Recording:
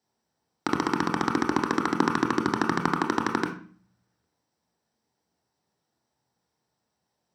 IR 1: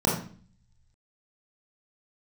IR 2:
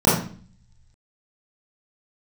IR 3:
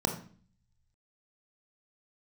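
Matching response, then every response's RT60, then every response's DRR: 3; 0.45 s, 0.45 s, 0.45 s; -4.5 dB, -10.5 dB, 4.0 dB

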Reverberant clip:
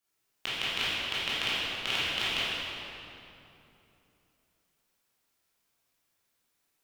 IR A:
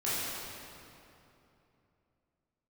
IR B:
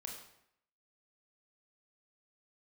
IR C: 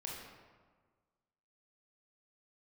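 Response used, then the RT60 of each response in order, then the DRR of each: A; 3.0 s, 0.75 s, 1.5 s; -11.5 dB, 0.0 dB, -3.0 dB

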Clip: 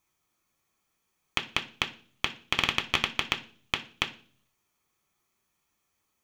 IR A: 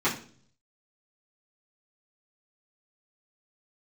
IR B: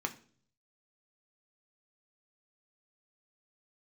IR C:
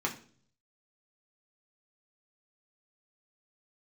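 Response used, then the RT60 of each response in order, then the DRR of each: B; 0.45 s, 0.45 s, 0.45 s; -11.0 dB, 4.5 dB, -1.0 dB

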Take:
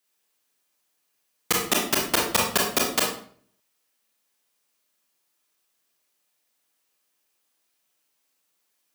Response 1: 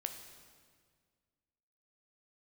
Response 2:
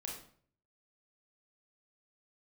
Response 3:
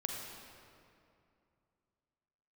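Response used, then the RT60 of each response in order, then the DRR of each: 2; 1.8 s, 0.50 s, 2.6 s; 5.5 dB, -2.0 dB, 0.5 dB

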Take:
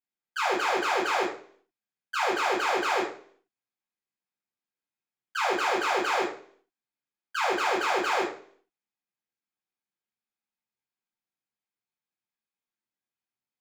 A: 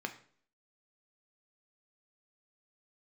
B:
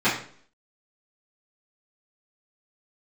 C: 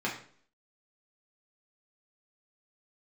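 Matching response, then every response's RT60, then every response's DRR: B; 0.50 s, 0.50 s, 0.50 s; 5.0 dB, -14.0 dB, -4.5 dB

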